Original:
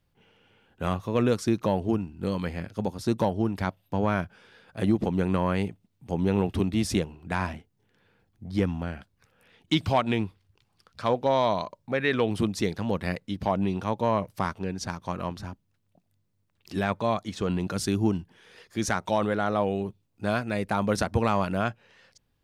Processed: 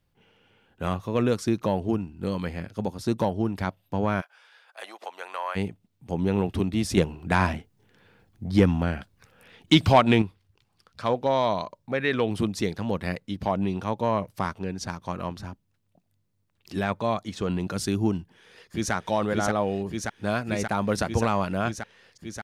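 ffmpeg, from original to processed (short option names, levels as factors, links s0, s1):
-filter_complex "[0:a]asplit=3[s0][s1][s2];[s0]afade=t=out:st=4.2:d=0.02[s3];[s1]highpass=f=690:w=0.5412,highpass=f=690:w=1.3066,afade=t=in:st=4.2:d=0.02,afade=t=out:st=5.55:d=0.02[s4];[s2]afade=t=in:st=5.55:d=0.02[s5];[s3][s4][s5]amix=inputs=3:normalize=0,asettb=1/sr,asplit=3[s6][s7][s8];[s6]atrim=end=6.974[s9];[s7]atrim=start=6.97:end=10.22,asetpts=PTS-STARTPTS,afade=t=in:d=0.004:c=qsin,afade=t=out:st=3.246:d=0.004:c=qsin,acontrast=77[s10];[s8]atrim=start=10.216[s11];[s9][s10]acrossfade=d=0.004:c1=hsin:c2=qsin[s12];[s12][s11]acrossfade=d=0.004:c1=qsin:c2=hsin,asplit=2[s13][s14];[s14]afade=t=in:st=18.16:d=0.01,afade=t=out:st=18.93:d=0.01,aecho=0:1:580|1160|1740|2320|2900|3480|4060|4640|5220|5800|6380|6960:0.749894|0.63741|0.541799|0.460529|0.391449|0.332732|0.282822|0.240399|0.204339|0.173688|0.147635|0.12549[s15];[s13][s15]amix=inputs=2:normalize=0"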